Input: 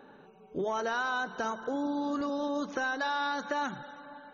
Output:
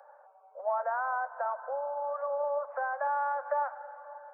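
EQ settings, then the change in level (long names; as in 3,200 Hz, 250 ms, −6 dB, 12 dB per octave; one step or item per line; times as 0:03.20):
Gaussian smoothing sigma 7.4 samples
Butterworth high-pass 540 Hz 96 dB per octave
+6.5 dB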